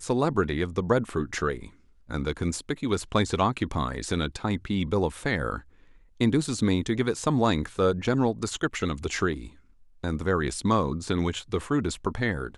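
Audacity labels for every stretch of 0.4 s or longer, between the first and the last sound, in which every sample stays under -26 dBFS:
1.540000	2.110000	silence
5.560000	6.210000	silence
9.340000	10.040000	silence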